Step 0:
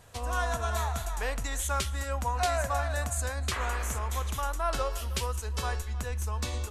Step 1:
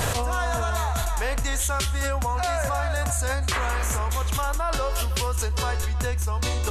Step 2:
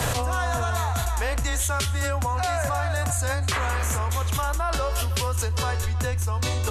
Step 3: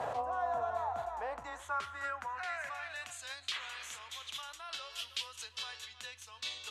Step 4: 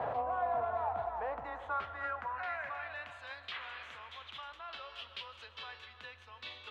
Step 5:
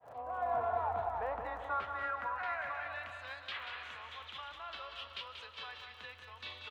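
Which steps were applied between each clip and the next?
fast leveller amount 100%
frequency shift +13 Hz
band-pass sweep 740 Hz -> 3400 Hz, 1.18–3.33; gain -3.5 dB
in parallel at -8 dB: hard clip -34 dBFS, distortion -13 dB; on the sum: air absorption 390 m; digital reverb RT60 4.1 s, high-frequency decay 0.4×, pre-delay 80 ms, DRR 12 dB
opening faded in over 0.55 s; crackle 19/s -54 dBFS; on a send: feedback echo 0.185 s, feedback 42%, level -7.5 dB

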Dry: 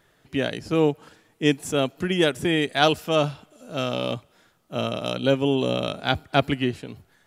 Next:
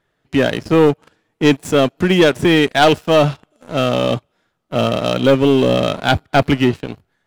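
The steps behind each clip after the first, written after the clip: high shelf 6000 Hz -10 dB; sample leveller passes 3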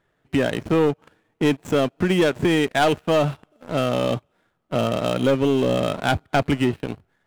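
median filter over 9 samples; compressor 2:1, threshold -21 dBFS, peak gain reduction 7.5 dB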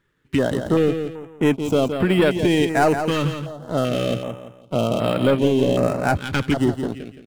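on a send: feedback echo 0.17 s, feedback 33%, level -8 dB; on the sum: stepped notch 2.6 Hz 690–6200 Hz; gain +1.5 dB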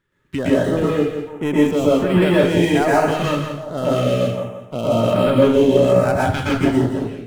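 plate-style reverb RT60 0.54 s, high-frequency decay 0.7×, pre-delay 0.105 s, DRR -6.5 dB; gain -4.5 dB

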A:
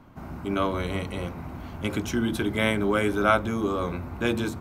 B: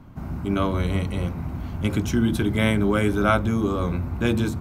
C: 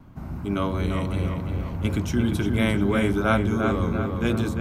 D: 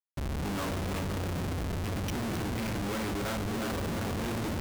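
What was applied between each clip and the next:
tone controls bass +9 dB, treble +2 dB
vibrato 2.8 Hz 36 cents; on a send: darkening echo 0.348 s, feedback 54%, low-pass 3200 Hz, level -4.5 dB; on the sum: gain -2.5 dB
Schmitt trigger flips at -35 dBFS; gain -8.5 dB

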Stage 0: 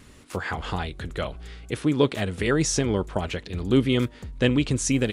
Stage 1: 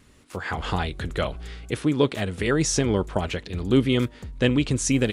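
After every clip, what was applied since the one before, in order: AGC gain up to 10.5 dB; gain -6 dB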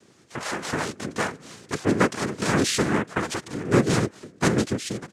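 ending faded out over 0.60 s; noise vocoder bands 3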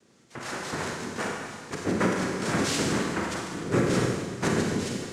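Schroeder reverb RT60 1.7 s, combs from 33 ms, DRR -1 dB; gain -6.5 dB

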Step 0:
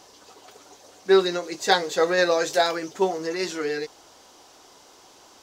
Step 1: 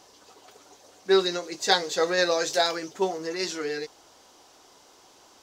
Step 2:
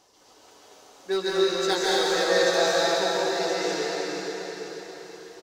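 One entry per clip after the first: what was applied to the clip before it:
dynamic EQ 5100 Hz, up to +6 dB, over -40 dBFS, Q 0.91; gain -3.5 dB
hard clip -13 dBFS, distortion -22 dB; feedback echo 0.484 s, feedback 42%, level -9.5 dB; plate-style reverb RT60 4.1 s, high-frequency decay 0.85×, pre-delay 0.12 s, DRR -7.5 dB; gain -6.5 dB

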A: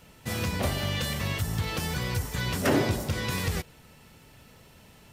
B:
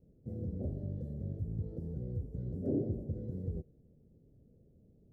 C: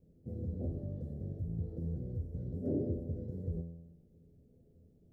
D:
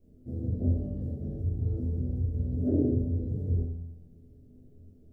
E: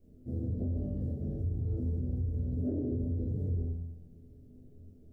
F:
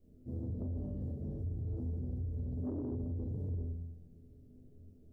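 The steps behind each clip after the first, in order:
inverse Chebyshev low-pass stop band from 970 Hz, stop band 40 dB; gain -7.5 dB
resonator 84 Hz, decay 1 s, harmonics all, mix 80%; gain +10.5 dB
shoebox room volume 290 m³, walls furnished, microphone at 2.9 m
limiter -26 dBFS, peak gain reduction 11.5 dB
soft clip -27 dBFS, distortion -21 dB; gain -3.5 dB

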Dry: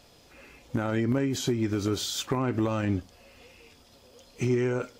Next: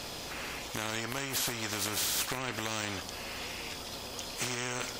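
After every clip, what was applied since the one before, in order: spectral compressor 4:1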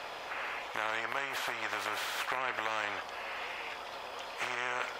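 three-band isolator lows -22 dB, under 530 Hz, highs -21 dB, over 2600 Hz; gain +5.5 dB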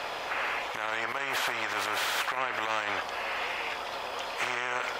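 limiter -26 dBFS, peak gain reduction 10.5 dB; gain +7 dB

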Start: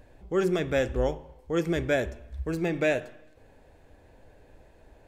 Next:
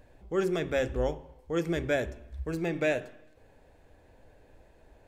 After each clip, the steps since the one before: de-hum 45.3 Hz, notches 9; gain -2.5 dB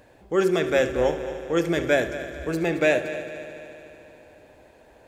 HPF 230 Hz 6 dB/oct; on a send: multi-head echo 74 ms, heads first and third, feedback 71%, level -14.5 dB; on the sum: gain +8 dB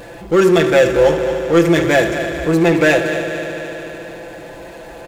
comb 5.9 ms, depth 81%; power-law curve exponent 0.7; gain +4 dB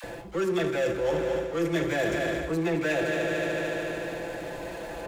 reverse; compressor 6:1, threshold -23 dBFS, peak gain reduction 14.5 dB; reverse; dispersion lows, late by 41 ms, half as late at 640 Hz; gain -2.5 dB

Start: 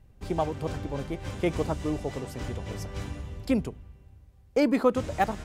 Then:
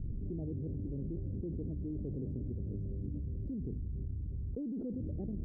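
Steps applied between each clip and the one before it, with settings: inverse Chebyshev low-pass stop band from 940 Hz, stop band 50 dB; limiter -28.5 dBFS, peak gain reduction 11 dB; fast leveller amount 100%; gain -6 dB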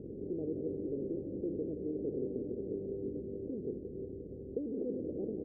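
per-bin compression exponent 0.6; band-pass 430 Hz, Q 3; feedback echo 0.176 s, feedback 58%, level -9 dB; gain +7 dB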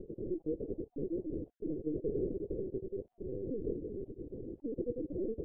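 random spectral dropouts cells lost 29%; on a send at -13.5 dB: reverb, pre-delay 30 ms; on the sum: LPC vocoder at 8 kHz pitch kept; gain +2 dB

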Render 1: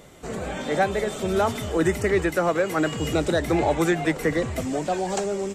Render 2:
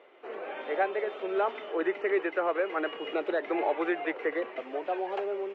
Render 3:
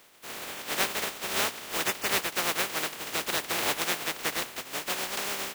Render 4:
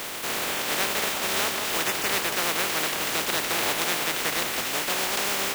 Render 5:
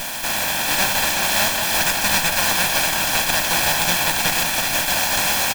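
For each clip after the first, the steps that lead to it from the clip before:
elliptic band-pass 370–2800 Hz, stop band 60 dB; gain -5 dB
spectral contrast lowered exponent 0.17
split-band echo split 1400 Hz, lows 0.181 s, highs 0.28 s, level -15.5 dB; fast leveller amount 70%
minimum comb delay 1.2 ms; echo 0.379 s -6.5 dB; gain +8 dB

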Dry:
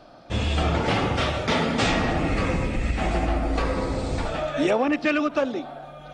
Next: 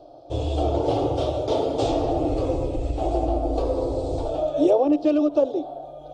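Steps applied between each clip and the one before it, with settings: EQ curve 140 Hz 0 dB, 200 Hz -29 dB, 290 Hz +6 dB, 690 Hz +6 dB, 1900 Hz -26 dB, 3300 Hz -6 dB; gain -1.5 dB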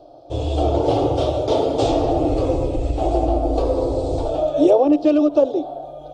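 AGC gain up to 3 dB; gain +1.5 dB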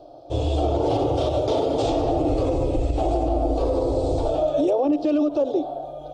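limiter -13.5 dBFS, peak gain reduction 9 dB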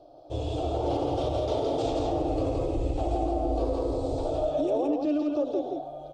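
loudspeakers at several distances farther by 39 m -12 dB, 58 m -4 dB; gain -7.5 dB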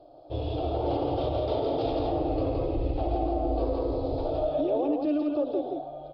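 air absorption 51 m; downsampling 11025 Hz

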